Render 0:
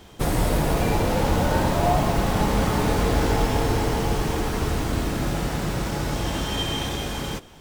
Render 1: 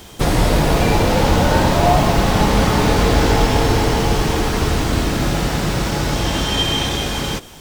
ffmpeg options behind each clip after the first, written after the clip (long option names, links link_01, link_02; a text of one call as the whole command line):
ffmpeg -i in.wav -filter_complex "[0:a]acrossover=split=5900[link_01][link_02];[link_02]acompressor=threshold=-50dB:ratio=4:attack=1:release=60[link_03];[link_01][link_03]amix=inputs=2:normalize=0,highshelf=frequency=4000:gain=9,volume=6.5dB" out.wav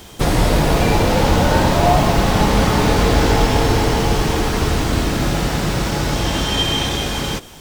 ffmpeg -i in.wav -af anull out.wav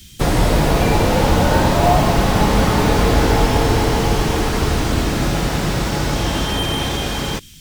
ffmpeg -i in.wav -filter_complex "[0:a]acrossover=split=240|2100[link_01][link_02][link_03];[link_02]acrusher=bits=4:mix=0:aa=0.5[link_04];[link_03]asoftclip=type=hard:threshold=-26dB[link_05];[link_01][link_04][link_05]amix=inputs=3:normalize=0" out.wav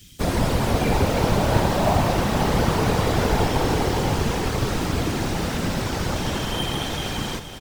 ffmpeg -i in.wav -af "afftfilt=real='hypot(re,im)*cos(2*PI*random(0))':imag='hypot(re,im)*sin(2*PI*random(1))':win_size=512:overlap=0.75,aecho=1:1:471|942|1413|1884|2355|2826:0.266|0.141|0.0747|0.0396|0.021|0.0111" out.wav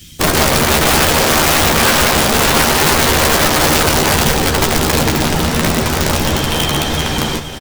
ffmpeg -i in.wav -filter_complex "[0:a]aeval=exprs='(mod(6.68*val(0)+1,2)-1)/6.68':channel_layout=same,asplit=2[link_01][link_02];[link_02]adelay=13,volume=-5.5dB[link_03];[link_01][link_03]amix=inputs=2:normalize=0,volume=9dB" out.wav